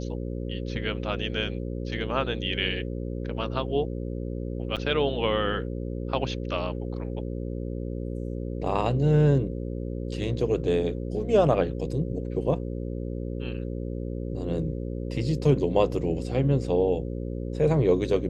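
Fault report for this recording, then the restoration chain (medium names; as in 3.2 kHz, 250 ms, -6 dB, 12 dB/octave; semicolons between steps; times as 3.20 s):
buzz 60 Hz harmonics 9 -32 dBFS
4.76–4.77 s: dropout 7.2 ms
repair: de-hum 60 Hz, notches 9; interpolate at 4.76 s, 7.2 ms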